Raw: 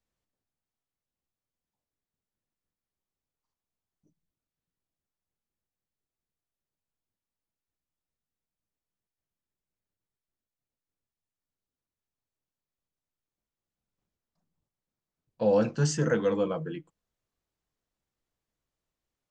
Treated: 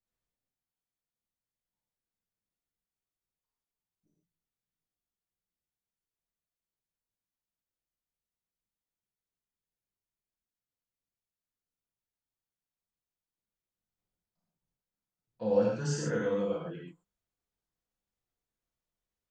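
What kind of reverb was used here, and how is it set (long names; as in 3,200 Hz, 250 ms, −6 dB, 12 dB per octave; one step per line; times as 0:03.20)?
reverb whose tail is shaped and stops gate 160 ms flat, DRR −4.5 dB
level −11 dB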